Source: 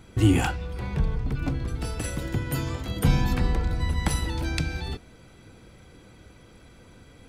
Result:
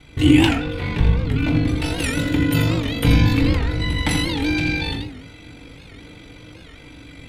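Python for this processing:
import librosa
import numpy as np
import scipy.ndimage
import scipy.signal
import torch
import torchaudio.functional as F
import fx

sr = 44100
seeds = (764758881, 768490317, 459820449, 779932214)

p1 = fx.band_shelf(x, sr, hz=2900.0, db=9.0, octaves=1.3)
p2 = fx.rider(p1, sr, range_db=10, speed_s=0.5)
p3 = p1 + F.gain(torch.from_numpy(p2), 1.0).numpy()
p4 = p3 * np.sin(2.0 * np.pi * 24.0 * np.arange(len(p3)) / sr)
p5 = p4 + fx.echo_single(p4, sr, ms=83, db=-7.0, dry=0)
p6 = fx.rev_fdn(p5, sr, rt60_s=0.54, lf_ratio=1.6, hf_ratio=0.45, size_ms=20.0, drr_db=1.0)
p7 = fx.record_warp(p6, sr, rpm=78.0, depth_cents=160.0)
y = F.gain(torch.from_numpy(p7), -2.0).numpy()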